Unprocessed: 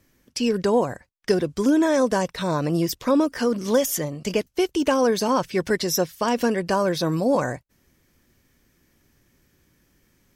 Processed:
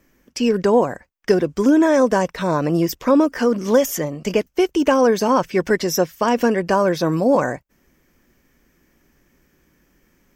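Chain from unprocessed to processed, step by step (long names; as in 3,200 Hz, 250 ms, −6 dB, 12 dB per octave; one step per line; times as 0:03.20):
graphic EQ with 15 bands 100 Hz −12 dB, 4,000 Hz −8 dB, 10,000 Hz −10 dB
level +5 dB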